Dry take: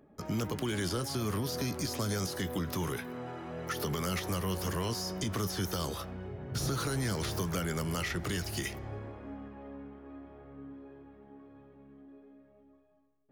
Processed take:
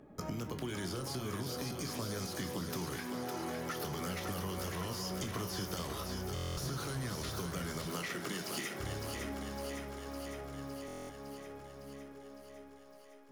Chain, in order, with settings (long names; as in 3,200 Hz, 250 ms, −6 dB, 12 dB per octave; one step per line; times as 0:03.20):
0:07.85–0:08.80: high-pass filter 170 Hz 24 dB per octave
downward compressor 10 to 1, threshold −41 dBFS, peak gain reduction 13 dB
feedback echo with a high-pass in the loop 558 ms, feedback 70%, high-pass 350 Hz, level −5 dB
convolution reverb RT60 0.40 s, pre-delay 16 ms, DRR 8 dB
buffer that repeats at 0:06.34/0:10.86, samples 1,024, times 9
level +4 dB
IMA ADPCM 176 kbit/s 44,100 Hz